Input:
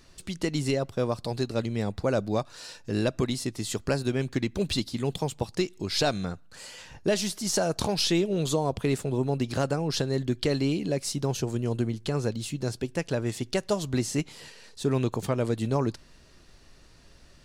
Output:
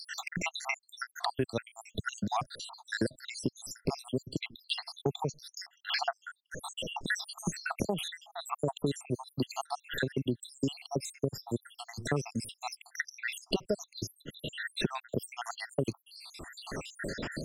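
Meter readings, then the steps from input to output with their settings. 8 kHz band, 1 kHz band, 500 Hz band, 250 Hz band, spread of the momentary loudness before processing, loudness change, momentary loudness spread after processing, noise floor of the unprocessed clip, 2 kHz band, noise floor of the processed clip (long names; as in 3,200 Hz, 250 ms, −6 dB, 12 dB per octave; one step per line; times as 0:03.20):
−7.5 dB, −2.5 dB, −9.0 dB, −8.5 dB, 6 LU, −8.0 dB, 9 LU, −54 dBFS, +1.0 dB, −74 dBFS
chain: time-frequency cells dropped at random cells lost 82%
low-shelf EQ 66 Hz −9.5 dB
multiband upward and downward compressor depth 100%
level +1 dB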